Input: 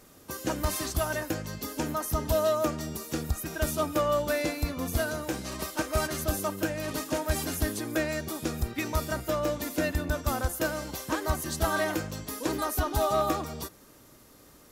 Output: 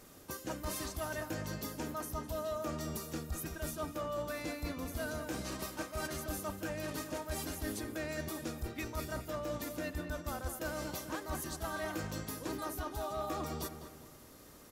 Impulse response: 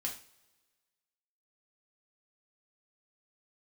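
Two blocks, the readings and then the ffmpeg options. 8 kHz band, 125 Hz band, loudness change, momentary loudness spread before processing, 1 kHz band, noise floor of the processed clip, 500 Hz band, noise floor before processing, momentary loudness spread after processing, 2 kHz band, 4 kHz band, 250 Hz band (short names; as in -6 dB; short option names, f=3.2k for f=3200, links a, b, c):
-8.5 dB, -9.5 dB, -9.5 dB, 7 LU, -10.0 dB, -55 dBFS, -10.5 dB, -55 dBFS, 3 LU, -9.0 dB, -9.0 dB, -8.5 dB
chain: -filter_complex "[0:a]areverse,acompressor=threshold=-35dB:ratio=6,areverse,asplit=2[a][b];[b]adelay=205,lowpass=f=2.6k:p=1,volume=-8.5dB,asplit=2[c][d];[d]adelay=205,lowpass=f=2.6k:p=1,volume=0.43,asplit=2[e][f];[f]adelay=205,lowpass=f=2.6k:p=1,volume=0.43,asplit=2[g][h];[h]adelay=205,lowpass=f=2.6k:p=1,volume=0.43,asplit=2[i][j];[j]adelay=205,lowpass=f=2.6k:p=1,volume=0.43[k];[a][c][e][g][i][k]amix=inputs=6:normalize=0,volume=-1.5dB"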